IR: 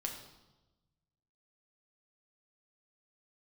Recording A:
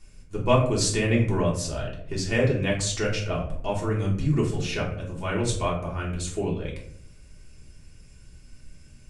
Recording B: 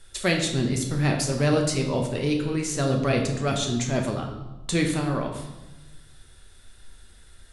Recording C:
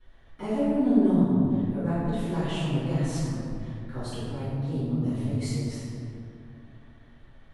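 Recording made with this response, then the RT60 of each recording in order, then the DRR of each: B; 0.65 s, 1.1 s, 2.6 s; -4.5 dB, 1.5 dB, -17.5 dB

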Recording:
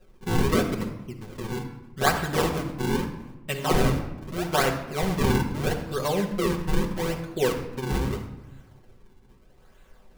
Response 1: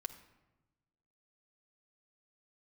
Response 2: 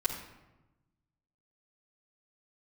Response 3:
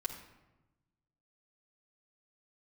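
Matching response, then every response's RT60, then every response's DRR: 3; 1.1 s, 1.0 s, 1.1 s; 4.0 dB, -6.5 dB, -2.0 dB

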